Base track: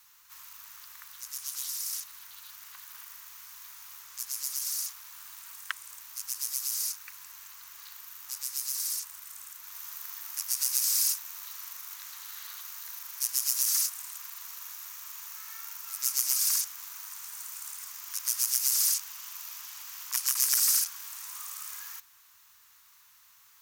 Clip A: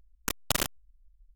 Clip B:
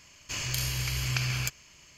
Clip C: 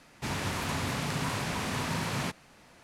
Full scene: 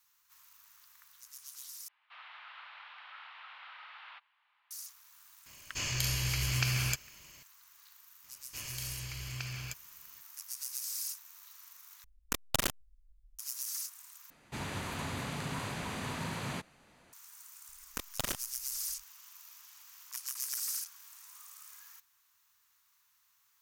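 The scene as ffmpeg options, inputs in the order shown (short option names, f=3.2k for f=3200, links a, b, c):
-filter_complex "[3:a]asplit=2[a][b];[2:a]asplit=2[c][d];[1:a]asplit=2[e][f];[0:a]volume=-12dB[g];[a]highpass=f=530:t=q:w=0.5412,highpass=f=530:t=q:w=1.307,lowpass=f=3.4k:t=q:w=0.5176,lowpass=f=3.4k:t=q:w=0.7071,lowpass=f=3.4k:t=q:w=1.932,afreqshift=330[h];[b]bandreject=f=5.4k:w=7[i];[g]asplit=4[j][k][l][m];[j]atrim=end=1.884[n];[h]atrim=end=2.83,asetpts=PTS-STARTPTS,volume=-14.5dB[o];[k]atrim=start=4.706:end=12.044[p];[e]atrim=end=1.35,asetpts=PTS-STARTPTS,volume=-3dB[q];[l]atrim=start=13.386:end=14.304[r];[i]atrim=end=2.83,asetpts=PTS-STARTPTS,volume=-6dB[s];[m]atrim=start=17.126[t];[c]atrim=end=1.97,asetpts=PTS-STARTPTS,volume=-1.5dB,afade=t=in:d=0.004:c=hsin,afade=t=out:st=1.966:d=0.004:c=hsin,adelay=5460[u];[d]atrim=end=1.97,asetpts=PTS-STARTPTS,volume=-11dB,afade=t=in:d=0.004:c=hsin,afade=t=out:st=1.966:d=0.004:c=hsin,adelay=8240[v];[f]atrim=end=1.35,asetpts=PTS-STARTPTS,volume=-8dB,afade=t=in:d=0.004:c=hsin,afade=t=out:st=1.346:d=0.004:c=hsin,adelay=17690[w];[n][o]acrossfade=d=0.004:c1=hsin:c2=hsin[x];[x][p]acrossfade=d=0.004:c1=hsin:c2=hsin[y];[y][q]acrossfade=d=0.004:c1=hsin:c2=hsin[z];[z][r]acrossfade=d=0.004:c1=hsin:c2=hsin[aa];[aa][s]acrossfade=d=0.004:c1=hsin:c2=hsin[ab];[ab][t]acrossfade=d=0.004:c1=hsin:c2=hsin[ac];[ac][u][v][w]amix=inputs=4:normalize=0"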